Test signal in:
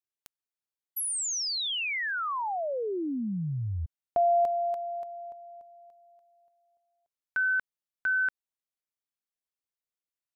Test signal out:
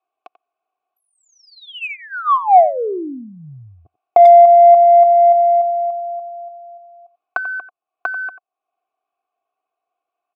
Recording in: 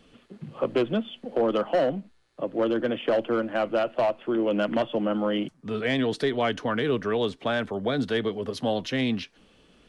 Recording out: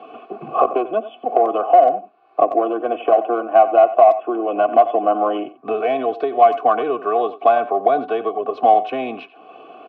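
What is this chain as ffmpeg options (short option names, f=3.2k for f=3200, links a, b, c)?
-filter_complex "[0:a]highpass=f=140:w=0.5412,highpass=f=140:w=1.3066,highshelf=f=6.9k:g=7.5,aecho=1:1:2.7:0.63,acompressor=threshold=-37dB:ratio=4:attack=33:release=822:knee=1:detection=peak,asplit=3[a][b][c];[a]bandpass=f=730:t=q:w=8,volume=0dB[d];[b]bandpass=f=1.09k:t=q:w=8,volume=-6dB[e];[c]bandpass=f=2.44k:t=q:w=8,volume=-9dB[f];[d][e][f]amix=inputs=3:normalize=0,adynamicsmooth=sensitivity=1.5:basefreq=1.7k,asplit=2[g][h];[h]adelay=90,highpass=300,lowpass=3.4k,asoftclip=type=hard:threshold=-33.5dB,volume=-14dB[i];[g][i]amix=inputs=2:normalize=0,alimiter=level_in=33.5dB:limit=-1dB:release=50:level=0:latency=1,volume=-1dB"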